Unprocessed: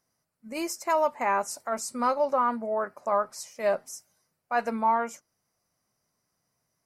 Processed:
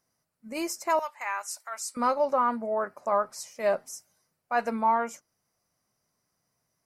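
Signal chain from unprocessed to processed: 0.99–1.97 HPF 1400 Hz 12 dB/oct

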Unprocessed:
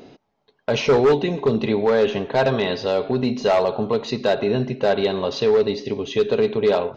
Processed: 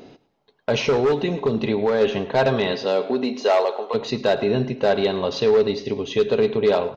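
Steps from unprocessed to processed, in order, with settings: 0.84–2.01 compressor, threshold -16 dBFS, peak gain reduction 4 dB; 2.72–3.93 HPF 130 Hz -> 510 Hz 24 dB/oct; on a send: feedback echo 0.107 s, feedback 34%, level -18 dB

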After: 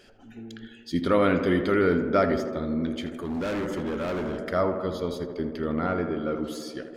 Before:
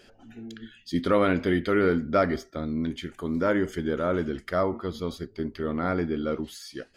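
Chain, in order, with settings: 5.86–6.36 overdrive pedal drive 9 dB, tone 1300 Hz, clips at -15.5 dBFS; tape echo 80 ms, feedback 89%, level -8 dB, low-pass 1900 Hz; 3.06–4.39 overloaded stage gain 26.5 dB

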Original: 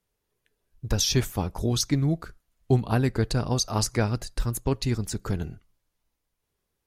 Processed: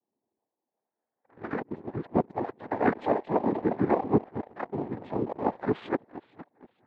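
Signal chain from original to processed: whole clip reversed; LFO low-pass saw up 0.63 Hz 800–1600 Hz; elliptic high-pass 390 Hz, stop band 50 dB; on a send: echo with dull and thin repeats by turns 0.232 s, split 970 Hz, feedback 58%, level -11 dB; on the sum: pitch shift -9.5 st; noise vocoder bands 6; sample leveller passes 1; LPF 3500 Hz 12 dB/oct

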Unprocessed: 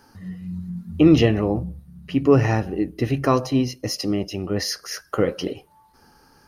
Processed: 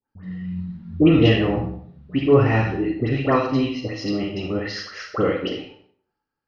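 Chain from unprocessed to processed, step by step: gate -49 dBFS, range -31 dB; LPF 3500 Hz 24 dB/oct; high shelf 2300 Hz +8 dB; dispersion highs, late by 89 ms, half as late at 1600 Hz; reverb RT60 0.60 s, pre-delay 27 ms, DRR 2 dB; gain -1.5 dB

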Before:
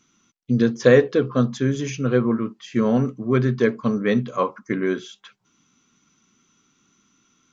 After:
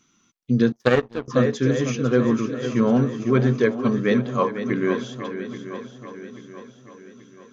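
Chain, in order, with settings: swung echo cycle 0.833 s, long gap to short 1.5:1, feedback 45%, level -10 dB; 0.72–1.28 power-law curve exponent 2

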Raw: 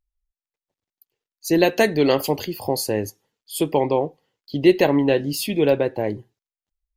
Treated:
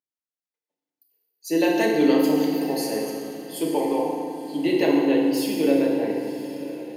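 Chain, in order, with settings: HPF 190 Hz 24 dB/oct; diffused feedback echo 0.979 s, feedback 42%, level -14 dB; FDN reverb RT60 2 s, low-frequency decay 1.45×, high-frequency decay 0.8×, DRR -2 dB; gain -8 dB

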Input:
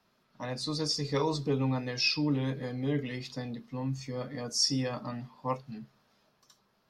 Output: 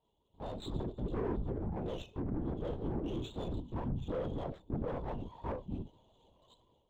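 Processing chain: treble ducked by the level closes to 510 Hz, closed at -24.5 dBFS; elliptic band-stop 1000–3000 Hz; limiter -31.5 dBFS, peak gain reduction 11.5 dB; AGC gain up to 11 dB; added harmonics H 6 -34 dB, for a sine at -20 dBFS; chorus voices 4, 0.32 Hz, delay 20 ms, depth 1.9 ms; tube stage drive 30 dB, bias 0.35; LPC vocoder at 8 kHz whisper; running maximum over 3 samples; gain -1 dB

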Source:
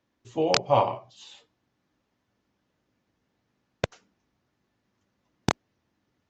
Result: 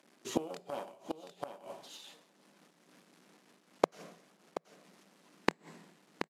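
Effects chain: CVSD 64 kbps; dynamic EQ 1100 Hz, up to -8 dB, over -37 dBFS, Q 1.2; tube stage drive 18 dB, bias 0.75; elliptic high-pass 160 Hz, stop band 40 dB; echo 0.729 s -9.5 dB; two-slope reverb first 0.72 s, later 3.4 s, from -27 dB, DRR 16.5 dB; flipped gate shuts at -33 dBFS, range -27 dB; noise-modulated level, depth 60%; gain +17.5 dB

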